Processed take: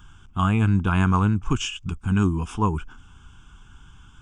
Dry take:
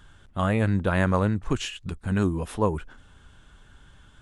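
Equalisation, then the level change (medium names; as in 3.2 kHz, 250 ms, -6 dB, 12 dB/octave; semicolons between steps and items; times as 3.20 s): static phaser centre 2.8 kHz, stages 8; +5.0 dB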